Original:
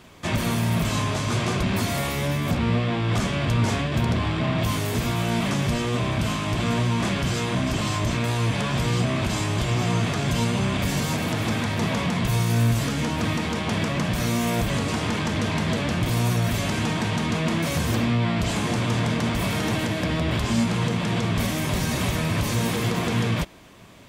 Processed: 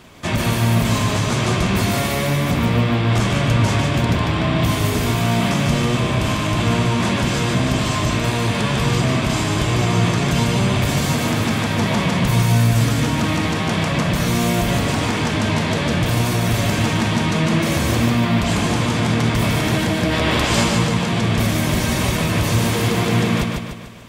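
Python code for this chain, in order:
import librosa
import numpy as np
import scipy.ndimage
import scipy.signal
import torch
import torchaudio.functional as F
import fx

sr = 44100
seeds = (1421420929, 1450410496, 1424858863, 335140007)

p1 = fx.spec_clip(x, sr, under_db=14, at=(20.12, 20.68), fade=0.02)
p2 = p1 + fx.echo_feedback(p1, sr, ms=148, feedback_pct=47, wet_db=-4, dry=0)
y = F.gain(torch.from_numpy(p2), 4.0).numpy()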